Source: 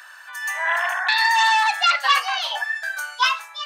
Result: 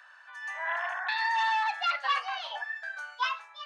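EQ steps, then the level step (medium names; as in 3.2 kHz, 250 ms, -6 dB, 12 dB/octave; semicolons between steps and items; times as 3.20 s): tape spacing loss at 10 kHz 32 dB; treble shelf 4.6 kHz +10.5 dB; -6.5 dB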